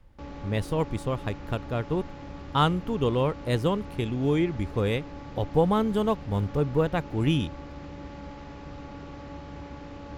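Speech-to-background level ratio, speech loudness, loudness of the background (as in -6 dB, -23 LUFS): 14.0 dB, -27.5 LUFS, -41.5 LUFS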